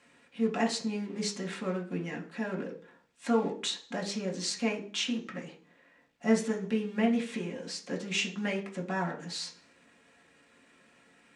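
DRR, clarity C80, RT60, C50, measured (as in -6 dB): -1.0 dB, 17.0 dB, 0.45 s, 12.0 dB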